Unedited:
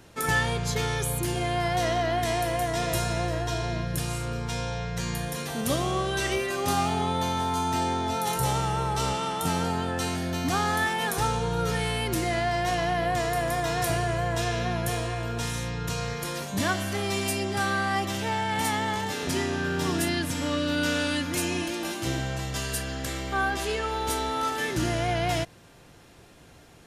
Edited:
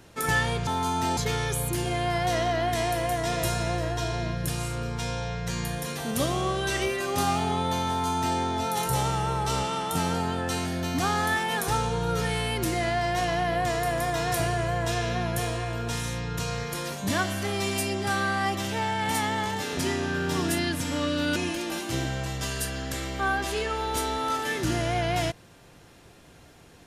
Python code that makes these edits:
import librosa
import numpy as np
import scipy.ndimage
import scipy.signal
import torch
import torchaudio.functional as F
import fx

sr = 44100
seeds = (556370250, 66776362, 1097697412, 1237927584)

y = fx.edit(x, sr, fx.duplicate(start_s=7.38, length_s=0.5, to_s=0.67),
    fx.cut(start_s=20.86, length_s=0.63), tone=tone)